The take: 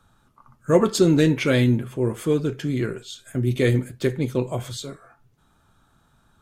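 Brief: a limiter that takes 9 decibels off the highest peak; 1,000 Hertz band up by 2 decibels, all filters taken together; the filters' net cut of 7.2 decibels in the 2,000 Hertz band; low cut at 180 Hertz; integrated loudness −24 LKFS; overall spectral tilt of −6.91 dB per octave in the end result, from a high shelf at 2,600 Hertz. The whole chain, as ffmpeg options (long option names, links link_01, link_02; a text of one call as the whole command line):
ffmpeg -i in.wav -af "highpass=180,equalizer=frequency=1000:width_type=o:gain=6,equalizer=frequency=2000:width_type=o:gain=-8.5,highshelf=frequency=2600:gain=-5.5,volume=1.5dB,alimiter=limit=-11.5dB:level=0:latency=1" out.wav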